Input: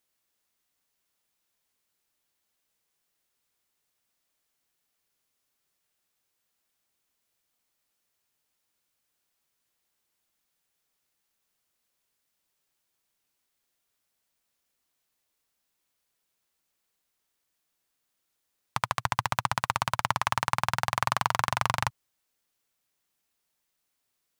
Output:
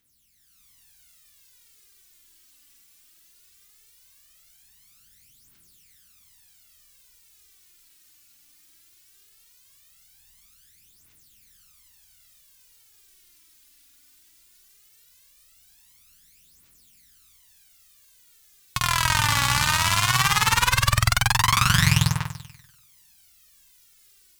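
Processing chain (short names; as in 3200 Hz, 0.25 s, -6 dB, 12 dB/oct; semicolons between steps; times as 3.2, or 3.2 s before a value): passive tone stack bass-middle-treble 6-0-2; AGC gain up to 9 dB; flutter echo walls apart 8.3 m, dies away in 1 s; phaser 0.18 Hz, delay 3.6 ms, feedback 68%; maximiser +23 dB; gain -1 dB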